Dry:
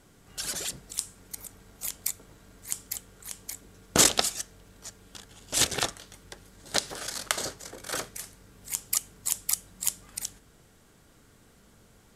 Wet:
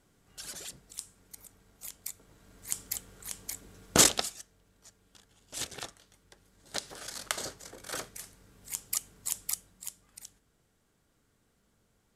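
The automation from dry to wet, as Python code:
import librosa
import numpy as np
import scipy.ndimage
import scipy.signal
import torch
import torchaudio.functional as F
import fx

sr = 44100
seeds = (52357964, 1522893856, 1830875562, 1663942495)

y = fx.gain(x, sr, db=fx.line((2.08, -9.5), (2.79, -0.5), (4.0, -0.5), (4.42, -13.0), (6.29, -13.0), (7.26, -5.0), (9.47, -5.0), (9.89, -13.5)))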